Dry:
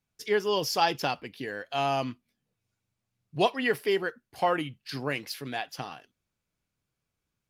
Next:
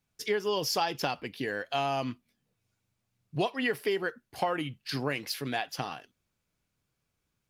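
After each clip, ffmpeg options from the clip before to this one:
-af "acompressor=threshold=-29dB:ratio=5,volume=3dB"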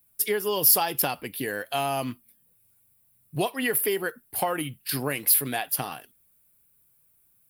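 -af "aexciter=amount=13.7:drive=5:freq=8.9k,volume=2.5dB"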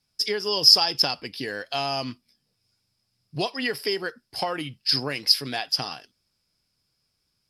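-af "lowpass=f=5.1k:t=q:w=14,volume=-1.5dB"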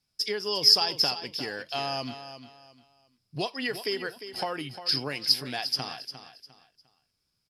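-af "aecho=1:1:352|704|1056:0.266|0.0772|0.0224,volume=-4dB"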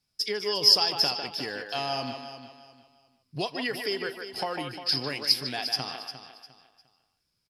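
-filter_complex "[0:a]asplit=2[a][b];[b]adelay=150,highpass=300,lowpass=3.4k,asoftclip=type=hard:threshold=-15dB,volume=-6dB[c];[a][c]amix=inputs=2:normalize=0"

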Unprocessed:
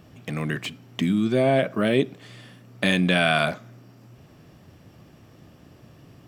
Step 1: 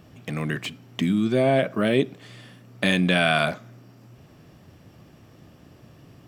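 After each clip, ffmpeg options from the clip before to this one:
-af anull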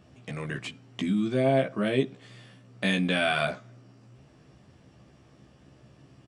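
-filter_complex "[0:a]asplit=2[a][b];[b]adelay=15,volume=-2.5dB[c];[a][c]amix=inputs=2:normalize=0,aresample=22050,aresample=44100,volume=-7dB"

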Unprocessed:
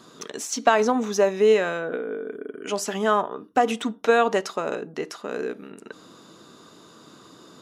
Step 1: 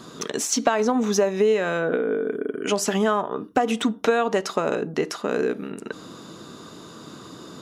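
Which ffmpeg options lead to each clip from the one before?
-af "lowshelf=f=200:g=7,acompressor=threshold=-24dB:ratio=4,volume=6dB"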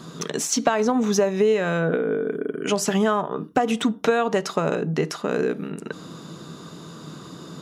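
-af "equalizer=f=160:w=4.6:g=11.5"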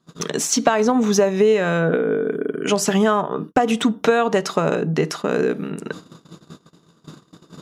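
-af "agate=range=-30dB:threshold=-36dB:ratio=16:detection=peak,volume=3.5dB"

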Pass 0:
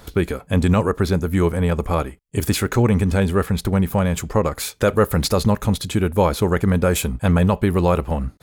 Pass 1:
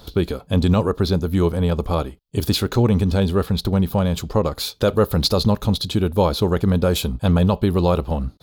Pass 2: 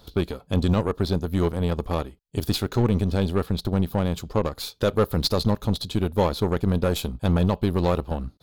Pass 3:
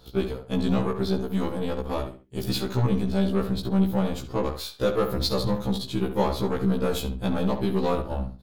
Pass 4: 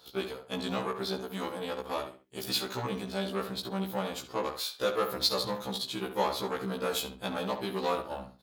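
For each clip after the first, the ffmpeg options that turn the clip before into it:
-af "equalizer=f=2k:t=o:w=1:g=-11,equalizer=f=4k:t=o:w=1:g=11,equalizer=f=8k:t=o:w=1:g=-9"
-af "aeval=exprs='0.596*(cos(1*acos(clip(val(0)/0.596,-1,1)))-cos(1*PI/2))+0.0299*(cos(7*acos(clip(val(0)/0.596,-1,1)))-cos(7*PI/2))+0.0211*(cos(8*acos(clip(val(0)/0.596,-1,1)))-cos(8*PI/2))':c=same,volume=-4dB"
-filter_complex "[0:a]asplit=2[a][b];[b]adelay=68,lowpass=f=2.7k:p=1,volume=-8dB,asplit=2[c][d];[d]adelay=68,lowpass=f=2.7k:p=1,volume=0.29,asplit=2[e][f];[f]adelay=68,lowpass=f=2.7k:p=1,volume=0.29[g];[a][c][e][g]amix=inputs=4:normalize=0,afftfilt=real='re*1.73*eq(mod(b,3),0)':imag='im*1.73*eq(mod(b,3),0)':win_size=2048:overlap=0.75"
-af "highpass=f=950:p=1,volume=1dB"

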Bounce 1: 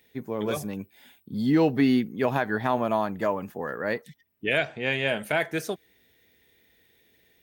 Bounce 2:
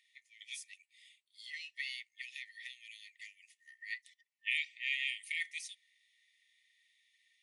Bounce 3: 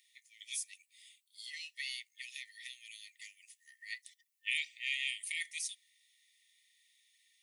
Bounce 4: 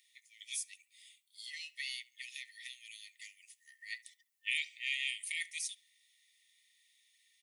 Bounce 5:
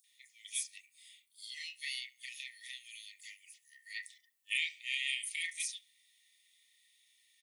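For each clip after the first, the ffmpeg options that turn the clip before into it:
-af "afftfilt=real='re*between(b*sr/4096,1800,11000)':imag='im*between(b*sr/4096,1800,11000)':win_size=4096:overlap=0.75,volume=-5.5dB"
-af "aderivative,volume=8.5dB"
-filter_complex "[0:a]asplit=2[a][b];[b]adelay=70,lowpass=f=2.2k:p=1,volume=-18dB,asplit=2[c][d];[d]adelay=70,lowpass=f=2.2k:p=1,volume=0.46,asplit=2[e][f];[f]adelay=70,lowpass=f=2.2k:p=1,volume=0.46,asplit=2[g][h];[h]adelay=70,lowpass=f=2.2k:p=1,volume=0.46[i];[a][c][e][g][i]amix=inputs=5:normalize=0"
-filter_complex "[0:a]acrossover=split=1900|5900[a][b][c];[b]adelay=40[d];[a]adelay=70[e];[e][d][c]amix=inputs=3:normalize=0,volume=3dB"

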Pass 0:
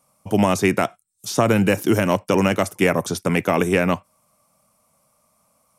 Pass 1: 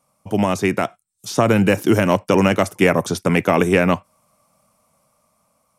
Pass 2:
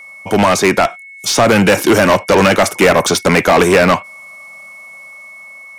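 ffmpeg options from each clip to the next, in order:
-af "highshelf=f=6.9k:g=-5.5,dynaudnorm=f=360:g=7:m=11.5dB,volume=-1dB"
-filter_complex "[0:a]asplit=2[a][b];[b]highpass=f=720:p=1,volume=24dB,asoftclip=type=tanh:threshold=-1.5dB[c];[a][c]amix=inputs=2:normalize=0,lowpass=f=6.1k:p=1,volume=-6dB,aeval=exprs='val(0)+0.0224*sin(2*PI*2200*n/s)':c=same"

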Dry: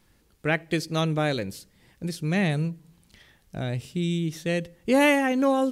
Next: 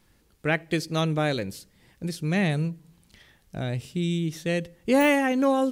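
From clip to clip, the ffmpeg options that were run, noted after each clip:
-af "deesser=0.55"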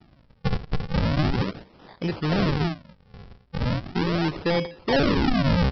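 -filter_complex "[0:a]asplit=2[a][b];[b]highpass=f=720:p=1,volume=28dB,asoftclip=type=tanh:threshold=-9dB[c];[a][c]amix=inputs=2:normalize=0,lowpass=f=1.8k:p=1,volume=-6dB,aresample=11025,acrusher=samples=20:mix=1:aa=0.000001:lfo=1:lforange=32:lforate=0.38,aresample=44100,volume=-4.5dB"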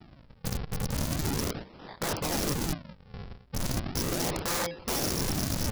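-af "aeval=exprs='(mod(22.4*val(0)+1,2)-1)/22.4':c=same,volume=2.5dB"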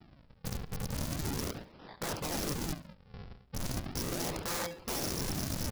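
-filter_complex "[0:a]aecho=1:1:70|140|210:0.133|0.0387|0.0112,acrossover=split=4300[a][b];[b]acrusher=bits=6:mode=log:mix=0:aa=0.000001[c];[a][c]amix=inputs=2:normalize=0,volume=-5.5dB"

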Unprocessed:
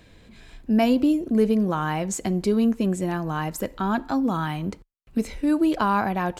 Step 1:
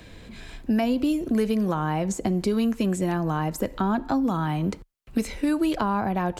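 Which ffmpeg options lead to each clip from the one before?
-filter_complex "[0:a]acrossover=split=130|960[a][b][c];[a]acompressor=threshold=-44dB:ratio=4[d];[b]acompressor=threshold=-30dB:ratio=4[e];[c]acompressor=threshold=-42dB:ratio=4[f];[d][e][f]amix=inputs=3:normalize=0,volume=6.5dB"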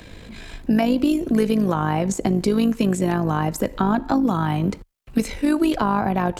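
-af "tremolo=f=52:d=0.519,volume=6.5dB"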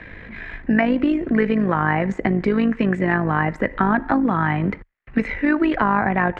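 -af "lowpass=f=1.9k:t=q:w=5"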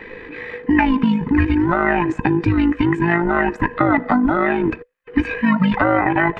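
-af "afftfilt=real='real(if(between(b,1,1008),(2*floor((b-1)/24)+1)*24-b,b),0)':imag='imag(if(between(b,1,1008),(2*floor((b-1)/24)+1)*24-b,b),0)*if(between(b,1,1008),-1,1)':win_size=2048:overlap=0.75,volume=2.5dB"

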